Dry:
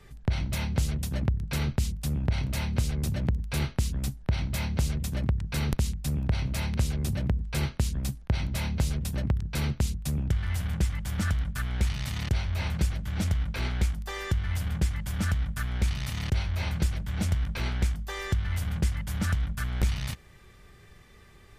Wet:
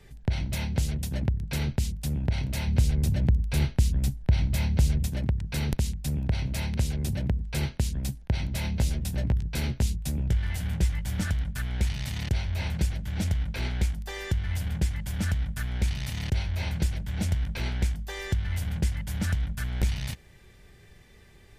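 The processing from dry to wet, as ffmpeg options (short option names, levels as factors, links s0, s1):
-filter_complex "[0:a]asettb=1/sr,asplit=3[s0][s1][s2];[s0]atrim=end=2.674[s3];[s1]atrim=start=2.67:end=5.07,asetpts=PTS-STARTPTS,afade=t=in:d=0.004:c=qsin,afade=t=out:st=2.396:d=0.004:c=qsin,lowshelf=f=130:g=7[s4];[s2]atrim=start=5.066[s5];[s3][s4]acrossfade=d=0.004:c1=hsin:c2=qsin[s6];[s6][s5]acrossfade=d=0.004:c1=qsin:c2=hsin,asettb=1/sr,asplit=3[s7][s8][s9];[s7]atrim=end=8.624[s10];[s8]atrim=start=8.62:end=11.3,asetpts=PTS-STARTPTS,afade=t=in:d=0.004:c=qsin,afade=t=out:st=2.676:d=0.004:c=qsin,asplit=2[s11][s12];[s12]adelay=17,volume=0.398[s13];[s11][s13]amix=inputs=2:normalize=0,atrim=end_sample=118188[s14];[s9]atrim=start=11.296[s15];[s10][s14]acrossfade=d=0.004:c1=hsin:c2=qsin[s16];[s16][s15]acrossfade=d=0.004:c1=qsin:c2=hsin,equalizer=f=1200:t=o:w=0.37:g=-8.5"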